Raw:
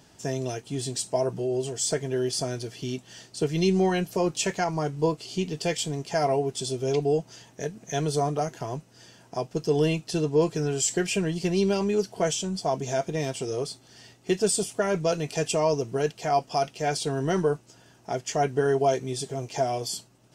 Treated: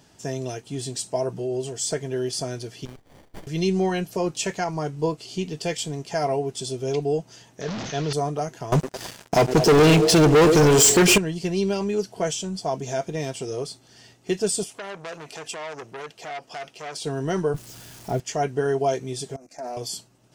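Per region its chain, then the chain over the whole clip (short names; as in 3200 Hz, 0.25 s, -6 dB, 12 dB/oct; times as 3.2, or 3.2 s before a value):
2.85–3.47 Chebyshev high-pass 2200 Hz, order 3 + high shelf 9500 Hz +11.5 dB + running maximum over 33 samples
7.61–8.13 delta modulation 32 kbps, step -31.5 dBFS + sustainer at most 29 dB/s
8.72–11.18 delay with a stepping band-pass 0.108 s, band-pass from 340 Hz, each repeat 0.7 oct, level -10 dB + sample leveller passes 5
14.64–17.04 tone controls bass -9 dB, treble -3 dB + compressor 3:1, threshold -28 dBFS + core saturation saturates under 2300 Hz
17.54–18.2 switching spikes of -26 dBFS + tilt -3.5 dB/oct
19.36–19.77 fixed phaser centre 620 Hz, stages 8 + level quantiser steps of 16 dB + Doppler distortion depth 0.14 ms
whole clip: dry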